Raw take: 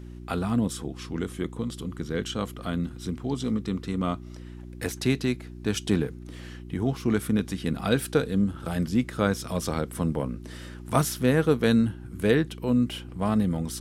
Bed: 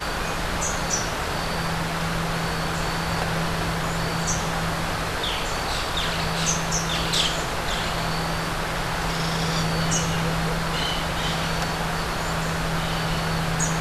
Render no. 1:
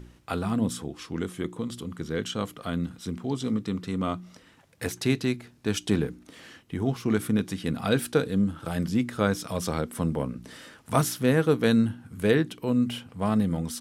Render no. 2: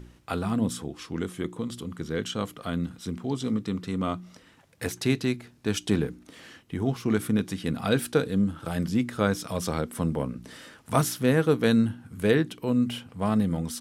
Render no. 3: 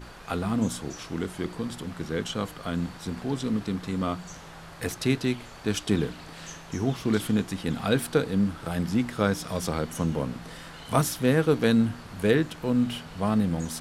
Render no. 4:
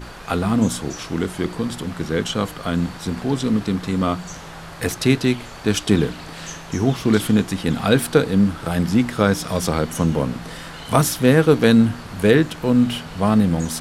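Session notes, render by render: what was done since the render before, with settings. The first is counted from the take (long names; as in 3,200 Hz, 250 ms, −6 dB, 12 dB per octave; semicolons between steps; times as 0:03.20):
hum removal 60 Hz, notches 6
no processing that can be heard
mix in bed −19.5 dB
level +8 dB; brickwall limiter −1 dBFS, peak gain reduction 2 dB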